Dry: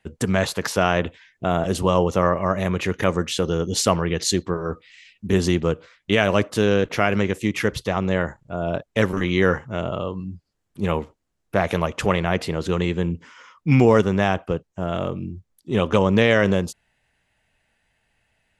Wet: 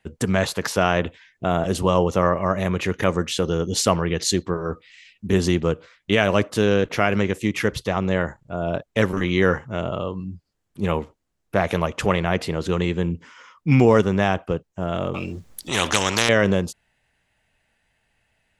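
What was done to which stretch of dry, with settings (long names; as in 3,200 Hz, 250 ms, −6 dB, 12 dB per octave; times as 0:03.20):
0:15.14–0:16.29: every bin compressed towards the loudest bin 4 to 1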